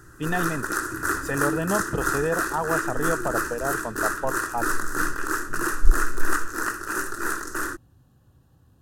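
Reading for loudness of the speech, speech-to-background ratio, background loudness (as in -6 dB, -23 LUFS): -29.5 LUFS, -2.0 dB, -27.5 LUFS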